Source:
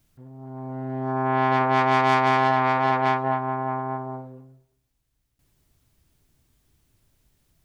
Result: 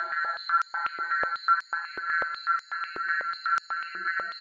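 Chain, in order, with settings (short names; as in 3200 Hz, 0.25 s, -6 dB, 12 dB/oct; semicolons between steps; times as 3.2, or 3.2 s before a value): half-waves squared off; sample leveller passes 3; loudest bins only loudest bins 1; soft clip -24 dBFS, distortion -15 dB; on a send: frequency-shifting echo 0.167 s, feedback 51%, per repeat +97 Hz, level -3.5 dB; on the sum: Paulstretch 11×, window 1.00 s, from 2.12; air absorption 330 m; speed mistake 45 rpm record played at 78 rpm; stepped high-pass 8.1 Hz 380–5700 Hz; gain -6.5 dB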